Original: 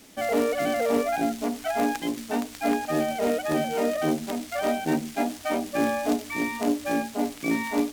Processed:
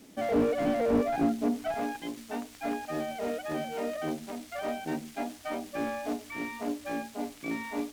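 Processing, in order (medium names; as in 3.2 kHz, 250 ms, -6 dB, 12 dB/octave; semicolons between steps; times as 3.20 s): peaking EQ 240 Hz +8.5 dB 2.7 oct, from 1.74 s -2 dB; slew-rate limiter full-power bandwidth 77 Hz; trim -7 dB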